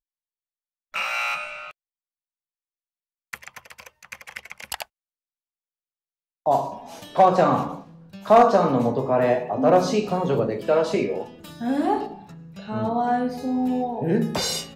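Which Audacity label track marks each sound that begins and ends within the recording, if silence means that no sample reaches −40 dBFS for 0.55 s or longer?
0.940000	1.710000	sound
3.330000	4.830000	sound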